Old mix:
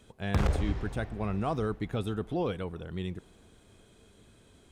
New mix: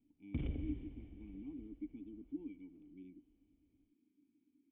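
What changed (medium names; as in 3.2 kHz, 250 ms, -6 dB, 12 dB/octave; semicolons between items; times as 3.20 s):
speech: add vowel filter u; master: add cascade formant filter i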